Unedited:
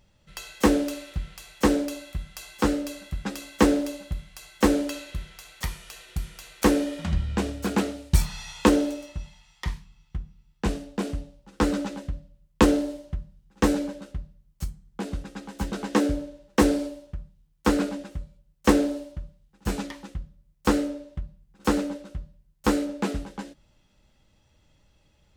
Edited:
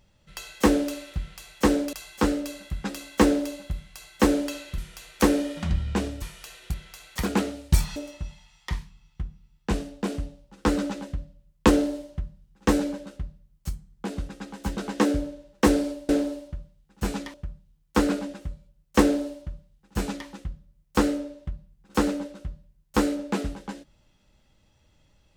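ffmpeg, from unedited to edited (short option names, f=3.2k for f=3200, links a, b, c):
-filter_complex "[0:a]asplit=9[a][b][c][d][e][f][g][h][i];[a]atrim=end=1.932[j];[b]atrim=start=2.338:end=5.192[k];[c]atrim=start=6.198:end=7.642[l];[d]atrim=start=5.678:end=6.202[m];[e]atrim=start=5.188:end=5.682[n];[f]atrim=start=7.638:end=8.372[o];[g]atrim=start=8.908:end=17.042[p];[h]atrim=start=18.728:end=19.982[q];[i]atrim=start=17.038[r];[j][k]acrossfade=d=0.004:c1=hsin:c2=hsin[s];[s][l]acrossfade=d=0.004:c1=hsin:c2=hsin[t];[t][m]acrossfade=d=0.004:c1=hsin:c2=hsin[u];[u][n]acrossfade=d=0.004:c1=hsin:c2=hsin[v];[v][o]acrossfade=d=0.004:c1=hsin:c2=hsin[w];[w][p]acrossfade=d=0.004:c1=hsin:c2=hsin[x];[x][q]acrossfade=d=0.004:c1=hsin:c2=hsin[y];[y][r]acrossfade=d=0.004:c1=hsin:c2=hsin"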